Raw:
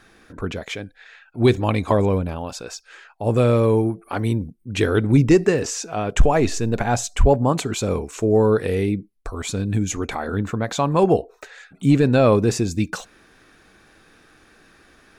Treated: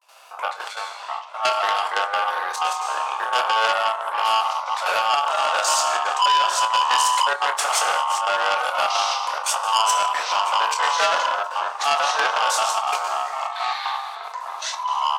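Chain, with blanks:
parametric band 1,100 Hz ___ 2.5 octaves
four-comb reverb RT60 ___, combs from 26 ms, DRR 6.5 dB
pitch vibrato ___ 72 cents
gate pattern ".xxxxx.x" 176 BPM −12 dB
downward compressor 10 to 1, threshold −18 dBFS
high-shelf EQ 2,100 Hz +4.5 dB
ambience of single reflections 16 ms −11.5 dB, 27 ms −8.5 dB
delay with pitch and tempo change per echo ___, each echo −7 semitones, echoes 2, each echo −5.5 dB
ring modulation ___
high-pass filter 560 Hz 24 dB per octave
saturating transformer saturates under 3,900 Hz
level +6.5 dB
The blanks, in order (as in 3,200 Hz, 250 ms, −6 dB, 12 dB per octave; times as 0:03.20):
−5 dB, 1.3 s, 0.44 Hz, 443 ms, 1,000 Hz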